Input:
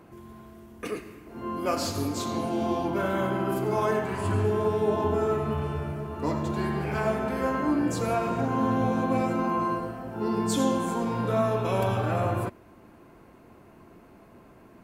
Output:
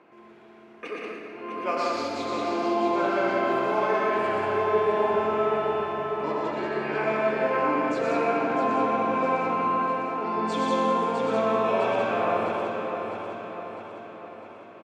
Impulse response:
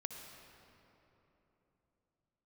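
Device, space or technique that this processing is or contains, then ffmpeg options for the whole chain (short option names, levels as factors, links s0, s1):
station announcement: -filter_complex "[0:a]highpass=360,lowpass=3600,equalizer=f=2400:t=o:w=0.44:g=5,aecho=1:1:119.5|183.7:0.631|0.708,aecho=1:1:654|1308|1962|2616|3270|3924:0.422|0.223|0.118|0.0628|0.0333|0.0176[s0];[1:a]atrim=start_sample=2205[s1];[s0][s1]afir=irnorm=-1:irlink=0,volume=1.33"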